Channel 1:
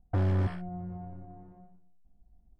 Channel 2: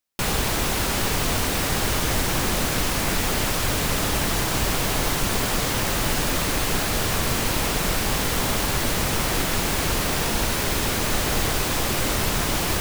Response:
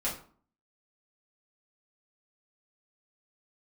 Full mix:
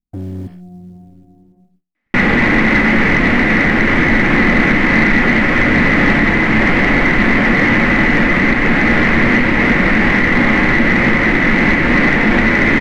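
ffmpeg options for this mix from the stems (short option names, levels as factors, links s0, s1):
-filter_complex "[0:a]agate=range=0.0891:threshold=0.00178:ratio=16:detection=peak,equalizer=f=1200:w=1:g=-10.5,acrusher=bits=7:mode=log:mix=0:aa=0.000001,volume=0.316[s0];[1:a]lowpass=f=2000:t=q:w=8.6,alimiter=limit=0.316:level=0:latency=1:release=228,adelay=1950,volume=0.75,asplit=2[s1][s2];[s2]volume=0.316[s3];[2:a]atrim=start_sample=2205[s4];[s3][s4]afir=irnorm=-1:irlink=0[s5];[s0][s1][s5]amix=inputs=3:normalize=0,equalizer=f=250:t=o:w=1.2:g=13.5,acontrast=84"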